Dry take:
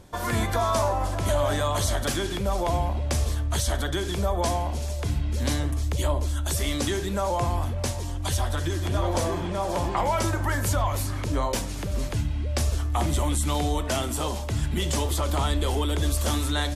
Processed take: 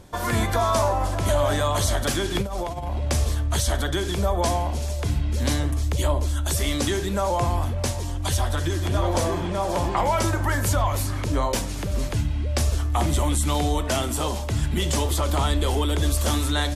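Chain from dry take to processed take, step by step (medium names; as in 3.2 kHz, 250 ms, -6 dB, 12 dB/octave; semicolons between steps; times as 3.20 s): 2.35–3.08 s: compressor with a negative ratio -28 dBFS, ratio -0.5; trim +2.5 dB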